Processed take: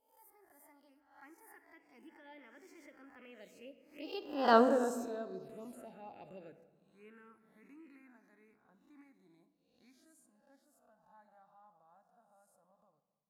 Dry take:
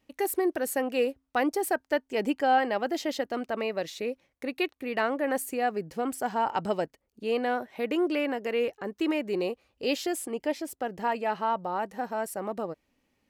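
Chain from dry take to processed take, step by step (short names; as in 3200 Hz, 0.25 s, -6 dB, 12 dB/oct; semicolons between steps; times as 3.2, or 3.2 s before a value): spectral swells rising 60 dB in 0.60 s; Doppler pass-by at 4.56, 34 m/s, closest 1.9 m; envelope phaser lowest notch 330 Hz, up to 2200 Hz, full sweep at -47 dBFS; on a send: reverb RT60 1.6 s, pre-delay 4 ms, DRR 10 dB; on the sum: gain +6 dB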